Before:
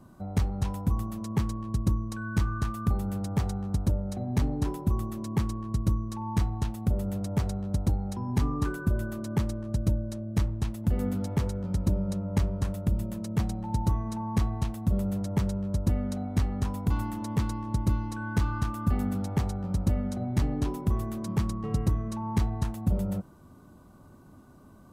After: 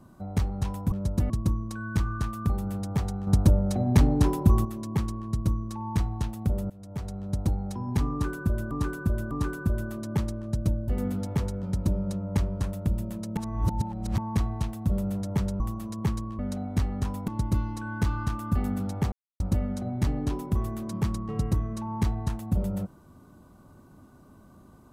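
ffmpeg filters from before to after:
-filter_complex "[0:a]asplit=16[s0][s1][s2][s3][s4][s5][s6][s7][s8][s9][s10][s11][s12][s13][s14][s15];[s0]atrim=end=0.922[s16];[s1]atrim=start=15.608:end=15.992[s17];[s2]atrim=start=1.708:end=3.682[s18];[s3]atrim=start=3.678:end=5.062,asetpts=PTS-STARTPTS,volume=2.24[s19];[s4]atrim=start=5.058:end=7.11,asetpts=PTS-STARTPTS,afade=t=out:st=2.048:d=0.004:c=hsin:silence=0.0794328[s20];[s5]atrim=start=7.11:end=9.122,asetpts=PTS-STARTPTS,afade=t=in:d=0.73:silence=0.0794328[s21];[s6]atrim=start=8.518:end=9.122[s22];[s7]atrim=start=8.518:end=10.092[s23];[s8]atrim=start=10.888:end=13.382[s24];[s9]atrim=start=13.378:end=14.192,asetpts=PTS-STARTPTS,areverse[s25];[s10]atrim=start=14.188:end=15.612[s26];[s11]atrim=start=0.918:end=1.712[s27];[s12]atrim=start=15.988:end=16.882[s28];[s13]atrim=start=17.628:end=19.47,asetpts=PTS-STARTPTS,afade=t=out:st=1.838:d=0.004:c=hsin[s29];[s14]atrim=start=19.47:end=19.75,asetpts=PTS-STARTPTS,volume=0[s30];[s15]atrim=start=19.75,asetpts=PTS-STARTPTS,afade=t=in:d=0.004:c=hsin[s31];[s16][s17]acrossfade=d=0.004:c1=hsin:c2=hsin[s32];[s32][s18]acrossfade=d=0.004:c1=hsin:c2=hsin[s33];[s33][s19]acrossfade=d=0.004:c1=hsin:c2=hsin[s34];[s20][s21]concat=n=2:v=0:a=1[s35];[s34][s35]acrossfade=d=0.004:c1=hsin:c2=hsin[s36];[s36][s22]acrossfade=d=0.004:c1=hsin:c2=hsin[s37];[s37][s23]acrossfade=d=0.004:c1=hsin:c2=hsin[s38];[s38][s24]acrossfade=d=0.004:c1=hsin:c2=hsin[s39];[s39][s25]acrossfade=d=0.004:c1=hsin:c2=hsin[s40];[s40][s26]acrossfade=d=0.004:c1=hsin:c2=hsin[s41];[s41][s27]acrossfade=d=0.004:c1=hsin:c2=hsin[s42];[s42][s28]acrossfade=d=0.004:c1=hsin:c2=hsin[s43];[s29][s30][s31]concat=n=3:v=0:a=1[s44];[s43][s44]acrossfade=d=0.004:c1=hsin:c2=hsin"

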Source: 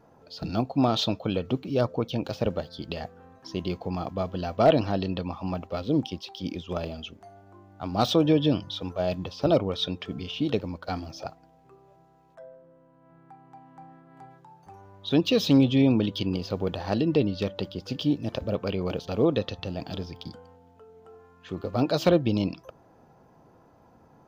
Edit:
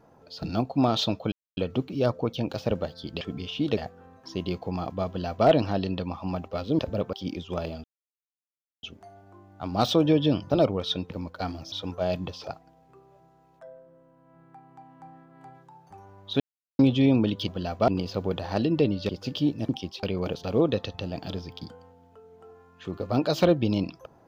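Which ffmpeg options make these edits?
-filter_complex "[0:a]asplit=18[s0][s1][s2][s3][s4][s5][s6][s7][s8][s9][s10][s11][s12][s13][s14][s15][s16][s17];[s0]atrim=end=1.32,asetpts=PTS-STARTPTS,afade=t=out:st=1.316:d=0.004:c=hsin,apad=pad_dur=0.25[s18];[s1]atrim=start=1.32:end=2.962,asetpts=PTS-STARTPTS,afade=t=in:d=0.004:c=hsin[s19];[s2]atrim=start=10.018:end=10.582[s20];[s3]atrim=start=2.958:end=5.982[s21];[s4]atrim=start=18.328:end=18.672[s22];[s5]atrim=start=6.318:end=7.03,asetpts=PTS-STARTPTS,afade=t=out:st=0.708:d=0.004:c=hsin,apad=pad_dur=0.99[s23];[s6]atrim=start=7.03:end=8.702,asetpts=PTS-STARTPTS,afade=t=in:d=0.004:c=hsin[s24];[s7]atrim=start=9.418:end=10.022[s25];[s8]atrim=start=10.578:end=11.202[s26];[s9]atrim=start=8.698:end=9.422[s27];[s10]atrim=start=11.198:end=15.16,asetpts=PTS-STARTPTS,afade=t=out:st=3.958:d=0.004:c=hsin[s28];[s11]atrim=start=15.16:end=15.55,asetpts=PTS-STARTPTS,volume=0[s29];[s12]atrim=start=15.55:end=16.242,asetpts=PTS-STARTPTS,afade=t=in:d=0.004:c=hsin[s30];[s13]atrim=start=4.258:end=4.662[s31];[s14]atrim=start=16.238:end=17.452[s32];[s15]atrim=start=17.728:end=18.332[s33];[s16]atrim=start=5.978:end=6.322[s34];[s17]atrim=start=18.668[s35];[s18][s19]concat=n=2:v=0:a=1[s36];[s36][s20]acrossfade=d=0.004:c1=hsin:c2=hsin[s37];[s37][s21]acrossfade=d=0.004:c1=hsin:c2=hsin[s38];[s38][s22]acrossfade=d=0.004:c1=hsin:c2=hsin[s39];[s23][s24]concat=n=2:v=0:a=1[s40];[s39][s40]acrossfade=d=0.004:c1=hsin:c2=hsin[s41];[s41][s25]acrossfade=d=0.004:c1=hsin:c2=hsin[s42];[s42][s26]acrossfade=d=0.004:c1=hsin:c2=hsin[s43];[s43][s27]acrossfade=d=0.004:c1=hsin:c2=hsin[s44];[s28][s29][s30]concat=n=3:v=0:a=1[s45];[s44][s45]acrossfade=d=0.004:c1=hsin:c2=hsin[s46];[s46][s31]acrossfade=d=0.004:c1=hsin:c2=hsin[s47];[s47][s32]acrossfade=d=0.004:c1=hsin:c2=hsin[s48];[s48][s33]acrossfade=d=0.004:c1=hsin:c2=hsin[s49];[s49][s34]acrossfade=d=0.004:c1=hsin:c2=hsin[s50];[s50][s35]acrossfade=d=0.004:c1=hsin:c2=hsin"

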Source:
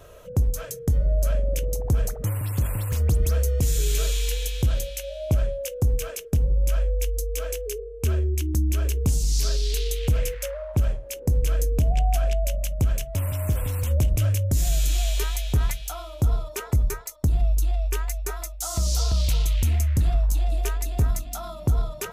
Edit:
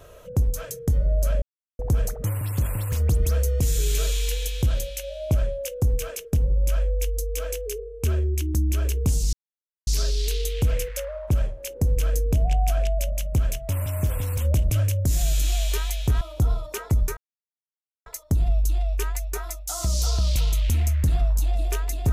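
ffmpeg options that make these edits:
-filter_complex "[0:a]asplit=6[s0][s1][s2][s3][s4][s5];[s0]atrim=end=1.42,asetpts=PTS-STARTPTS,afade=t=out:st=1.416:d=0.004:c=hsin[s6];[s1]atrim=start=1.42:end=1.79,asetpts=PTS-STARTPTS,volume=0[s7];[s2]atrim=start=1.79:end=9.33,asetpts=PTS-STARTPTS,afade=t=in:d=0.004:c=hsin,afade=t=out:st=7.536:d=0.004:c=hsin,apad=pad_dur=0.54[s8];[s3]atrim=start=9.33:end=15.672,asetpts=PTS-STARTPTS,afade=t=in:d=0.004:c=hsin[s9];[s4]atrim=start=16.028:end=16.99,asetpts=PTS-STARTPTS,afade=t=out:st=0.958:d=0.004:c=hsin,apad=pad_dur=0.89[s10];[s5]atrim=start=16.99,asetpts=PTS-STARTPTS,afade=t=in:d=0.004:c=hsin[s11];[s6][s7][s8][s9]concat=n=4:v=0:a=1[s12];[s10][s11]concat=n=2:v=0:a=1[s13];[s12][s13]acrossfade=d=0.004:c1=hsin:c2=hsin"

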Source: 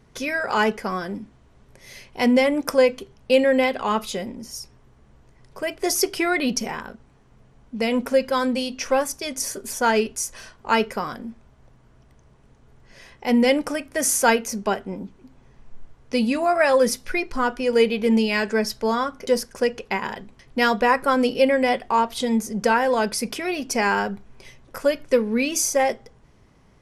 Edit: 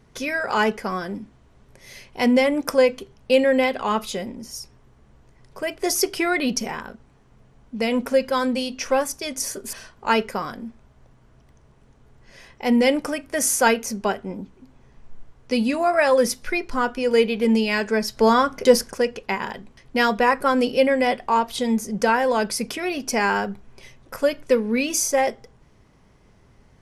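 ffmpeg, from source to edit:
-filter_complex "[0:a]asplit=4[s0][s1][s2][s3];[s0]atrim=end=9.732[s4];[s1]atrim=start=10.348:end=18.792[s5];[s2]atrim=start=18.788:end=19.562,asetpts=PTS-STARTPTS,volume=2[s6];[s3]atrim=start=19.558[s7];[s4][s5]acrossfade=d=0.004:c1=hsin:c2=hsin[s8];[s8][s6]acrossfade=d=0.004:c1=hsin:c2=hsin[s9];[s9][s7]acrossfade=d=0.004:c1=hsin:c2=hsin"

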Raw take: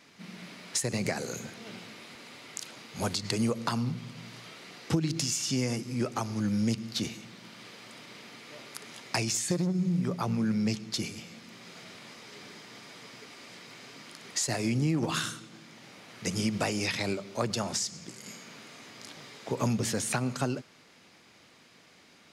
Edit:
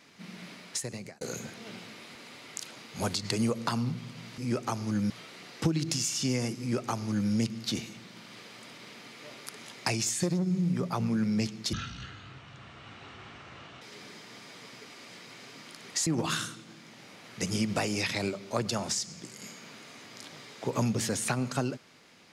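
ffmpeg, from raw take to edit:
-filter_complex "[0:a]asplit=7[s0][s1][s2][s3][s4][s5][s6];[s0]atrim=end=1.21,asetpts=PTS-STARTPTS,afade=t=out:st=0.52:d=0.69[s7];[s1]atrim=start=1.21:end=4.382,asetpts=PTS-STARTPTS,afade=t=in:d=0.004:c=hsin[s8];[s2]atrim=start=5.868:end=6.592[s9];[s3]atrim=start=4.378:end=11.014[s10];[s4]atrim=start=11.01:end=12.22,asetpts=PTS-STARTPTS,asetrate=25578,aresample=44100[s11];[s5]atrim=start=12.216:end=14.472[s12];[s6]atrim=start=14.908[s13];[s7][s8]concat=n=2:v=0:a=1[s14];[s14][s9]acrossfade=d=0.004:c1=hsin:c2=hsin[s15];[s15][s10]acrossfade=d=0.004:c1=hsin:c2=hsin[s16];[s16][s11]acrossfade=d=0.004:c1=hsin:c2=hsin[s17];[s17][s12]acrossfade=d=0.004:c1=hsin:c2=hsin[s18];[s18][s13]acrossfade=d=0.004:c1=hsin:c2=hsin"

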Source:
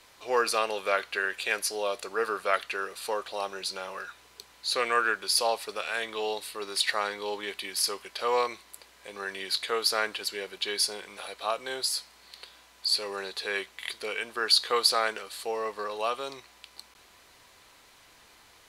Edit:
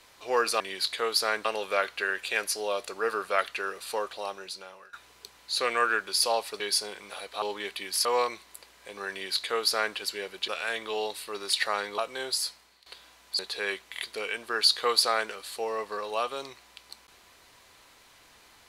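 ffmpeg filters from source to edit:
-filter_complex "[0:a]asplit=11[s0][s1][s2][s3][s4][s5][s6][s7][s8][s9][s10];[s0]atrim=end=0.602[s11];[s1]atrim=start=9.298:end=10.152[s12];[s2]atrim=start=0.598:end=4.08,asetpts=PTS-STARTPTS,afade=t=out:st=2.572:d=0.91:silence=0.11885[s13];[s3]atrim=start=4.08:end=5.752,asetpts=PTS-STARTPTS,afade=t=in:d=0.004:c=hsin:silence=0.11885[s14];[s4]atrim=start=10.668:end=11.492[s15];[s5]atrim=start=7.248:end=7.882[s16];[s6]atrim=start=8.238:end=10.672[s17];[s7]atrim=start=5.748:end=7.252[s18];[s8]atrim=start=11.488:end=12.37,asetpts=PTS-STARTPTS,afade=t=out:st=0.502:d=0.38:silence=0.149624[s19];[s9]atrim=start=12.37:end=12.902,asetpts=PTS-STARTPTS,afade=t=in:d=0.004:c=hsin:silence=0.149624[s20];[s10]atrim=start=13.258[s21];[s11][s12]acrossfade=d=0.004:c1=hsin:c2=hsin[s22];[s13][s14]concat=n=2:v=0:a=1[s23];[s22][s23]acrossfade=d=0.004:c1=hsin:c2=hsin[s24];[s24][s15]acrossfade=d=0.004:c1=hsin:c2=hsin[s25];[s25][s16]acrossfade=d=0.004:c1=hsin:c2=hsin[s26];[s26][s17]acrossfade=d=0.004:c1=hsin:c2=hsin[s27];[s27][s18]acrossfade=d=0.004:c1=hsin:c2=hsin[s28];[s19][s20]concat=n=2:v=0:a=1[s29];[s28][s29]acrossfade=d=0.004:c1=hsin:c2=hsin[s30];[s30][s21]acrossfade=d=0.004:c1=hsin:c2=hsin"

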